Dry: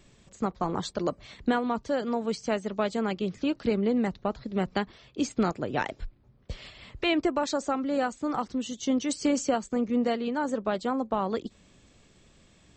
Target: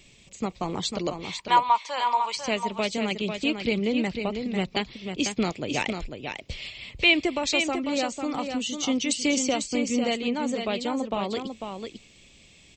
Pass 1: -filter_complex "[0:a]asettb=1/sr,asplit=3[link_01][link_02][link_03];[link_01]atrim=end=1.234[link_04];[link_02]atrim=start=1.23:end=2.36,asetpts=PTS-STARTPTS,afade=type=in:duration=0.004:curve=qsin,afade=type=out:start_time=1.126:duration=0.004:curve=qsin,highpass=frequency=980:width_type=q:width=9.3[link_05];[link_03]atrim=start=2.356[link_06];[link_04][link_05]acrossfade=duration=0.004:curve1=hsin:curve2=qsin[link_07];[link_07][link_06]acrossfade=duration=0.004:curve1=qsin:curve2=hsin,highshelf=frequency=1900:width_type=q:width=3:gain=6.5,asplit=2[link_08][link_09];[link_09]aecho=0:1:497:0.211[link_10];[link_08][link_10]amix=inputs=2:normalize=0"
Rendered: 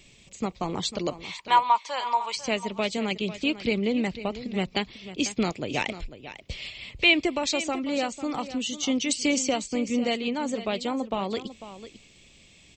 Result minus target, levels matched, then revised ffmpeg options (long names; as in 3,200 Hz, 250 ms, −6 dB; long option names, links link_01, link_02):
echo-to-direct −7 dB
-filter_complex "[0:a]asettb=1/sr,asplit=3[link_01][link_02][link_03];[link_01]atrim=end=1.234[link_04];[link_02]atrim=start=1.23:end=2.36,asetpts=PTS-STARTPTS,afade=type=in:duration=0.004:curve=qsin,afade=type=out:start_time=1.126:duration=0.004:curve=qsin,highpass=frequency=980:width_type=q:width=9.3[link_05];[link_03]atrim=start=2.356[link_06];[link_04][link_05]acrossfade=duration=0.004:curve1=hsin:curve2=qsin[link_07];[link_07][link_06]acrossfade=duration=0.004:curve1=qsin:curve2=hsin,highshelf=frequency=1900:width_type=q:width=3:gain=6.5,asplit=2[link_08][link_09];[link_09]aecho=0:1:497:0.473[link_10];[link_08][link_10]amix=inputs=2:normalize=0"